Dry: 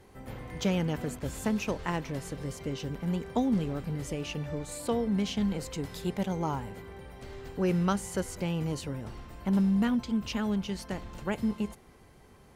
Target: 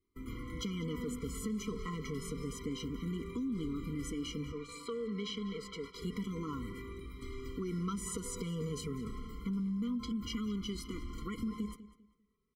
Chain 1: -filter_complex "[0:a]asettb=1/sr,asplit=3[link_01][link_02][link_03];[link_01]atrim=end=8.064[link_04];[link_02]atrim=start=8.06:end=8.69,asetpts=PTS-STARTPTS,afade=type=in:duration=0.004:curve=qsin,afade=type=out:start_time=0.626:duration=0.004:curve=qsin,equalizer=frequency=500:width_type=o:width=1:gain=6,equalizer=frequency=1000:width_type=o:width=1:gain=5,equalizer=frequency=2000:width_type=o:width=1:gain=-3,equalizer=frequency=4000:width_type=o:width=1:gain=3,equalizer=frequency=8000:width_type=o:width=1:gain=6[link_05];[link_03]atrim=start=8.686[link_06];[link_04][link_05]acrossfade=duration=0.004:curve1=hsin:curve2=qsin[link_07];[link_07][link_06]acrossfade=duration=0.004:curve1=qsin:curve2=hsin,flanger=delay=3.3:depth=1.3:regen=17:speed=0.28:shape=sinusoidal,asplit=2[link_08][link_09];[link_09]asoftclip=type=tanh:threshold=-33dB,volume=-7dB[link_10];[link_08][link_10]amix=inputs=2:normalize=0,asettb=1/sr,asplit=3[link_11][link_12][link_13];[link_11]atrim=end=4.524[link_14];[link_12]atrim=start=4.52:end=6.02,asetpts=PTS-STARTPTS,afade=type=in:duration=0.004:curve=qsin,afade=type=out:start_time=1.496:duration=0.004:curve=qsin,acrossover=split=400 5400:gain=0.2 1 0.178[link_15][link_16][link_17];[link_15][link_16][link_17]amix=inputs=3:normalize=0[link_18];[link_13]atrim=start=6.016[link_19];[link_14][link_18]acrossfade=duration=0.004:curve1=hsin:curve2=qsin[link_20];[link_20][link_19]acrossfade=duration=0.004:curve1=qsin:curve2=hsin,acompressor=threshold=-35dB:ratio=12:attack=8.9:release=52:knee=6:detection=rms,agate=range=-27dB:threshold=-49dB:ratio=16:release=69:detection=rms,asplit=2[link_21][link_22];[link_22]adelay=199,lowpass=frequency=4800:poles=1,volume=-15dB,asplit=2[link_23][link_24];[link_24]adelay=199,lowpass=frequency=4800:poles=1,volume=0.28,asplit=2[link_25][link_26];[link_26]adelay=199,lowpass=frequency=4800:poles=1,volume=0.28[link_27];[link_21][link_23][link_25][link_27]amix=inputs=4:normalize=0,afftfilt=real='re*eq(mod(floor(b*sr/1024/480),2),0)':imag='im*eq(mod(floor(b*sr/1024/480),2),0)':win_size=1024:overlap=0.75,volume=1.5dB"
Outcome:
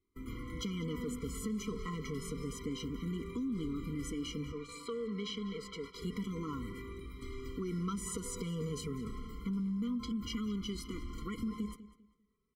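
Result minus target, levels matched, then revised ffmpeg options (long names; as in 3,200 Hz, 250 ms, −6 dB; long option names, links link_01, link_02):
soft clipping: distortion +7 dB
-filter_complex "[0:a]asettb=1/sr,asplit=3[link_01][link_02][link_03];[link_01]atrim=end=8.064[link_04];[link_02]atrim=start=8.06:end=8.69,asetpts=PTS-STARTPTS,afade=type=in:duration=0.004:curve=qsin,afade=type=out:start_time=0.626:duration=0.004:curve=qsin,equalizer=frequency=500:width_type=o:width=1:gain=6,equalizer=frequency=1000:width_type=o:width=1:gain=5,equalizer=frequency=2000:width_type=o:width=1:gain=-3,equalizer=frequency=4000:width_type=o:width=1:gain=3,equalizer=frequency=8000:width_type=o:width=1:gain=6[link_05];[link_03]atrim=start=8.686[link_06];[link_04][link_05]acrossfade=duration=0.004:curve1=hsin:curve2=qsin[link_07];[link_07][link_06]acrossfade=duration=0.004:curve1=qsin:curve2=hsin,flanger=delay=3.3:depth=1.3:regen=17:speed=0.28:shape=sinusoidal,asplit=2[link_08][link_09];[link_09]asoftclip=type=tanh:threshold=-26dB,volume=-7dB[link_10];[link_08][link_10]amix=inputs=2:normalize=0,asettb=1/sr,asplit=3[link_11][link_12][link_13];[link_11]atrim=end=4.524[link_14];[link_12]atrim=start=4.52:end=6.02,asetpts=PTS-STARTPTS,afade=type=in:duration=0.004:curve=qsin,afade=type=out:start_time=1.496:duration=0.004:curve=qsin,acrossover=split=400 5400:gain=0.2 1 0.178[link_15][link_16][link_17];[link_15][link_16][link_17]amix=inputs=3:normalize=0[link_18];[link_13]atrim=start=6.016[link_19];[link_14][link_18]acrossfade=duration=0.004:curve1=hsin:curve2=qsin[link_20];[link_20][link_19]acrossfade=duration=0.004:curve1=qsin:curve2=hsin,acompressor=threshold=-35dB:ratio=12:attack=8.9:release=52:knee=6:detection=rms,agate=range=-27dB:threshold=-49dB:ratio=16:release=69:detection=rms,asplit=2[link_21][link_22];[link_22]adelay=199,lowpass=frequency=4800:poles=1,volume=-15dB,asplit=2[link_23][link_24];[link_24]adelay=199,lowpass=frequency=4800:poles=1,volume=0.28,asplit=2[link_25][link_26];[link_26]adelay=199,lowpass=frequency=4800:poles=1,volume=0.28[link_27];[link_21][link_23][link_25][link_27]amix=inputs=4:normalize=0,afftfilt=real='re*eq(mod(floor(b*sr/1024/480),2),0)':imag='im*eq(mod(floor(b*sr/1024/480),2),0)':win_size=1024:overlap=0.75,volume=1.5dB"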